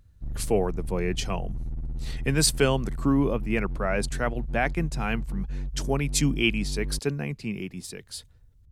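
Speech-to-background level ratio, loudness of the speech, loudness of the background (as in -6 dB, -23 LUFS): 8.0 dB, -27.5 LUFS, -35.5 LUFS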